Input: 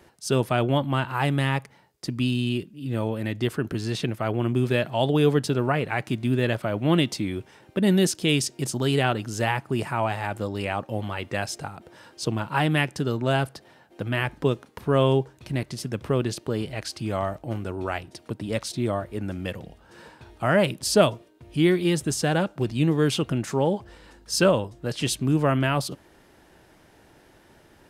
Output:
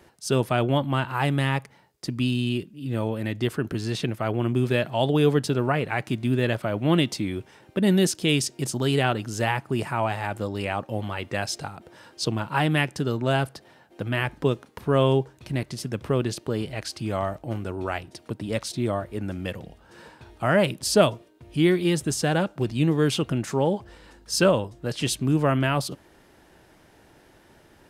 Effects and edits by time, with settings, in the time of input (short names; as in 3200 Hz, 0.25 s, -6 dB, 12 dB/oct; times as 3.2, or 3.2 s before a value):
11.44–12.29 dynamic EQ 4200 Hz, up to +6 dB, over -47 dBFS, Q 1.4